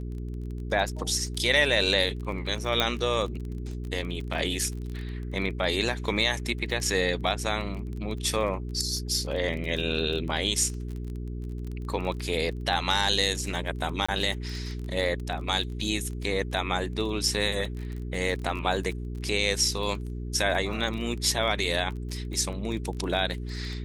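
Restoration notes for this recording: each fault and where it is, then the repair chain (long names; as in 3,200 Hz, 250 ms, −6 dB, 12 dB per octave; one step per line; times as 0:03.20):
surface crackle 22 per second −33 dBFS
mains hum 60 Hz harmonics 7 −34 dBFS
0:02.80: click −9 dBFS
0:14.06–0:14.09: drop-out 25 ms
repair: click removal
hum removal 60 Hz, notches 7
repair the gap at 0:14.06, 25 ms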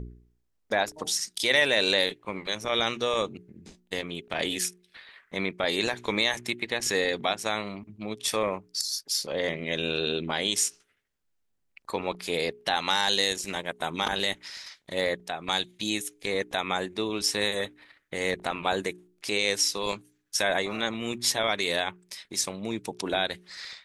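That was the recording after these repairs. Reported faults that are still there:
0:02.80: click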